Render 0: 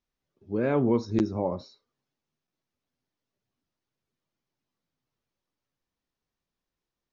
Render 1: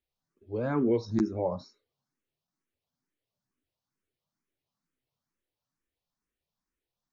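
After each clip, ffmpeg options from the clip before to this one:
-filter_complex "[0:a]asplit=2[s0][s1];[s1]afreqshift=2.2[s2];[s0][s2]amix=inputs=2:normalize=1"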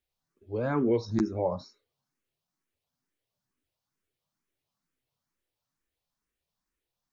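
-af "equalizer=f=250:t=o:w=1.8:g=-3,volume=1.33"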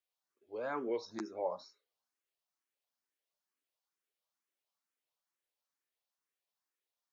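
-af "highpass=500,volume=0.562"

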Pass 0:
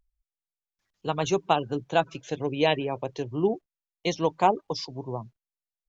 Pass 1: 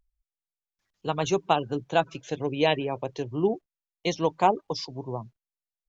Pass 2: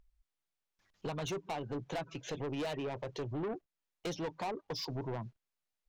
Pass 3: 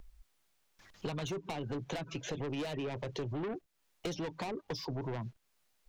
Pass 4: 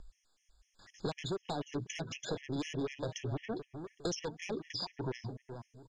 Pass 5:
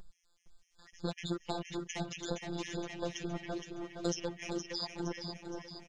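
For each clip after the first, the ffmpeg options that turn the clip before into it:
-af anull
-af "highshelf=f=6500:g=-9.5,acompressor=threshold=0.0126:ratio=2.5,asoftclip=type=tanh:threshold=0.0106,volume=2"
-filter_complex "[0:a]alimiter=level_in=8.41:limit=0.0631:level=0:latency=1:release=370,volume=0.119,acrossover=split=400|1700[s0][s1][s2];[s0]acompressor=threshold=0.00251:ratio=4[s3];[s1]acompressor=threshold=0.00126:ratio=4[s4];[s2]acompressor=threshold=0.00112:ratio=4[s5];[s3][s4][s5]amix=inputs=3:normalize=0,volume=5.31"
-filter_complex "[0:a]lowpass=f=6300:t=q:w=2.4,asplit=2[s0][s1];[s1]adelay=407,lowpass=f=1900:p=1,volume=0.355,asplit=2[s2][s3];[s3]adelay=407,lowpass=f=1900:p=1,volume=0.33,asplit=2[s4][s5];[s5]adelay=407,lowpass=f=1900:p=1,volume=0.33,asplit=2[s6][s7];[s7]adelay=407,lowpass=f=1900:p=1,volume=0.33[s8];[s0][s2][s4][s6][s8]amix=inputs=5:normalize=0,afftfilt=real='re*gt(sin(2*PI*4*pts/sr)*(1-2*mod(floor(b*sr/1024/1700),2)),0)':imag='im*gt(sin(2*PI*4*pts/sr)*(1-2*mod(floor(b*sr/1024/1700),2)),0)':win_size=1024:overlap=0.75,volume=1.26"
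-af "afftfilt=real='hypot(re,im)*cos(PI*b)':imag='0':win_size=1024:overlap=0.75,aecho=1:1:467|934|1401|1868|2335|2802:0.447|0.237|0.125|0.0665|0.0352|0.0187,volume=1.5"

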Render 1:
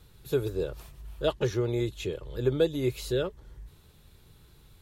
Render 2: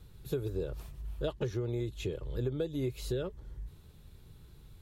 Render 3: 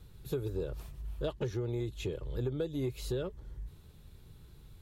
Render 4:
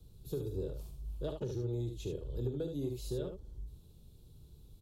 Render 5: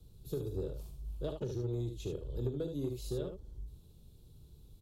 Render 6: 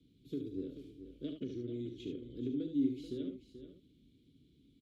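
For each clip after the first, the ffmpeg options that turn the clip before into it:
-af "lowshelf=f=370:g=7.5,acompressor=threshold=0.0562:ratio=10,volume=0.596"
-af "asoftclip=type=tanh:threshold=0.0794"
-filter_complex "[0:a]aecho=1:1:42|74:0.316|0.501,acrossover=split=160|650|2900[s0][s1][s2][s3];[s2]adynamicsmooth=sensitivity=3.5:basefreq=860[s4];[s0][s1][s4][s3]amix=inputs=4:normalize=0,volume=0.668"
-af "aeval=exprs='0.0596*(cos(1*acos(clip(val(0)/0.0596,-1,1)))-cos(1*PI/2))+0.00376*(cos(3*acos(clip(val(0)/0.0596,-1,1)))-cos(3*PI/2))+0.000473*(cos(8*acos(clip(val(0)/0.0596,-1,1)))-cos(8*PI/2))':c=same,volume=1.19"
-filter_complex "[0:a]asplit=3[s0][s1][s2];[s0]bandpass=f=270:t=q:w=8,volume=1[s3];[s1]bandpass=f=2290:t=q:w=8,volume=0.501[s4];[s2]bandpass=f=3010:t=q:w=8,volume=0.355[s5];[s3][s4][s5]amix=inputs=3:normalize=0,aecho=1:1:434:0.266,volume=3.76"

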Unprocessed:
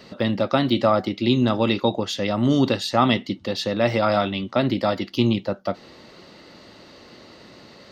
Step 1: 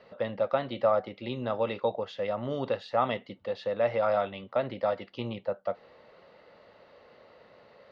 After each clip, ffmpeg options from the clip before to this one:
-af "lowpass=2300,lowshelf=f=400:t=q:w=3:g=-6,volume=0.376"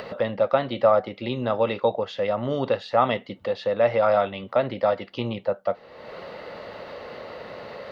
-af "acompressor=mode=upward:threshold=0.0224:ratio=2.5,volume=2.11"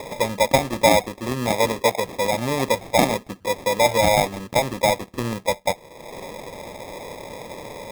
-af "acrusher=samples=30:mix=1:aa=0.000001,volume=1.33"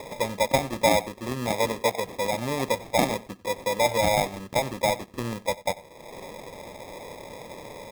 -filter_complex "[0:a]asplit=2[s0][s1];[s1]adelay=93.29,volume=0.1,highshelf=f=4000:g=-2.1[s2];[s0][s2]amix=inputs=2:normalize=0,volume=0.562"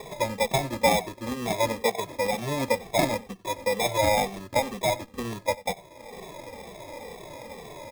-filter_complex "[0:a]asplit=2[s0][s1];[s1]adelay=2.2,afreqshift=-2.1[s2];[s0][s2]amix=inputs=2:normalize=1,volume=1.33"

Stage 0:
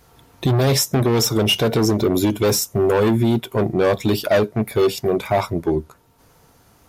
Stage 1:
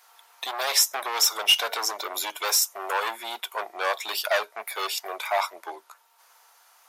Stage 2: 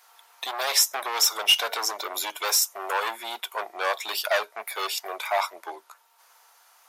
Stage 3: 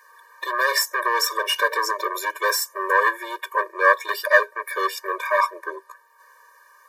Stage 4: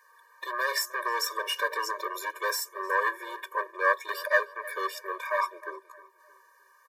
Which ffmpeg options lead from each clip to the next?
-af "highpass=f=790:w=0.5412,highpass=f=790:w=1.3066"
-af anull
-af "highshelf=f=2200:t=q:w=3:g=-8,afftfilt=real='re*eq(mod(floor(b*sr/1024/310),2),1)':imag='im*eq(mod(floor(b*sr/1024/310),2),1)':win_size=1024:overlap=0.75,volume=2.82"
-filter_complex "[0:a]asplit=2[s0][s1];[s1]adelay=309,lowpass=f=2700:p=1,volume=0.126,asplit=2[s2][s3];[s3]adelay=309,lowpass=f=2700:p=1,volume=0.42,asplit=2[s4][s5];[s5]adelay=309,lowpass=f=2700:p=1,volume=0.42[s6];[s0][s2][s4][s6]amix=inputs=4:normalize=0,volume=0.398"

